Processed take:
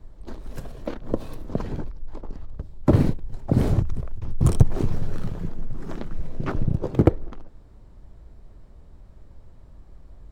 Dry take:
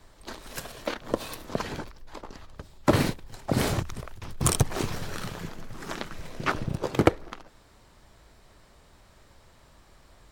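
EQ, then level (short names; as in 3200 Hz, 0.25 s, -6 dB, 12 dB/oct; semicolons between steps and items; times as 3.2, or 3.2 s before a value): tilt shelf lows +9.5 dB, about 800 Hz; low shelf 64 Hz +9.5 dB; -3.5 dB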